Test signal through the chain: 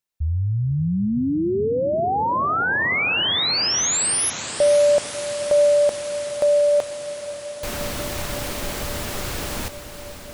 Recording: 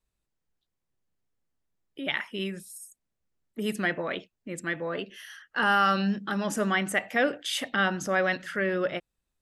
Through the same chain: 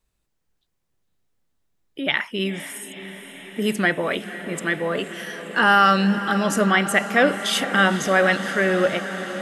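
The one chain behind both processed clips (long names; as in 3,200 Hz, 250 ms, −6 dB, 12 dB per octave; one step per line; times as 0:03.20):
feedback delay with all-pass diffusion 507 ms, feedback 79%, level −13 dB
level +7.5 dB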